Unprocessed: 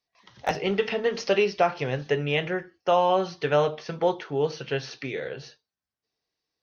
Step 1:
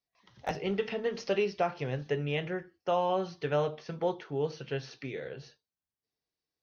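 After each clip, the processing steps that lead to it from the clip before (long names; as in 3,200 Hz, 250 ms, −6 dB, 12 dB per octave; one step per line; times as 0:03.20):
low-shelf EQ 360 Hz +6 dB
level −9 dB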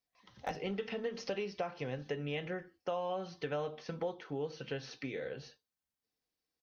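comb filter 3.9 ms, depth 31%
downward compressor 3 to 1, threshold −36 dBFS, peak gain reduction 10 dB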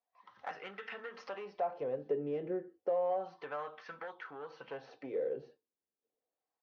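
soft clipping −32 dBFS, distortion −16 dB
LFO wah 0.31 Hz 370–1,500 Hz, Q 2.4
level +8.5 dB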